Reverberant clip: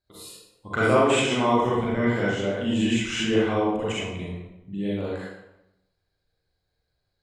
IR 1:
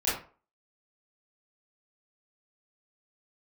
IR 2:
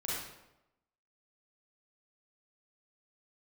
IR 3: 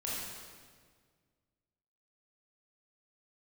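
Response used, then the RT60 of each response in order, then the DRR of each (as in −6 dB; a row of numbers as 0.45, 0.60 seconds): 2; 0.40, 0.90, 1.7 seconds; −11.0, −7.5, −7.0 decibels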